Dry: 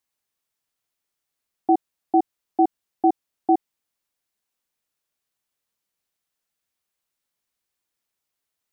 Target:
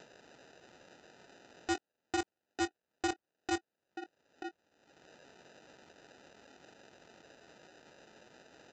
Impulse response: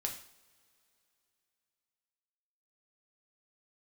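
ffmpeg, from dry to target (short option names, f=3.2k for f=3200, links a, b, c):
-filter_complex "[0:a]asplit=2[a][b];[b]alimiter=limit=-18.5dB:level=0:latency=1,volume=-1dB[c];[a][c]amix=inputs=2:normalize=0,acrusher=samples=40:mix=1:aa=0.000001,highpass=f=730:p=1,asplit=2[d][e];[e]adelay=932.9,volume=-23dB,highshelf=f=4k:g=-21[f];[d][f]amix=inputs=2:normalize=0,acompressor=mode=upward:threshold=-24dB:ratio=2.5,aresample=16000,asoftclip=type=tanh:threshold=-17dB,aresample=44100,asplit=2[g][h];[h]adelay=23,volume=-13.5dB[i];[g][i]amix=inputs=2:normalize=0,volume=-7dB"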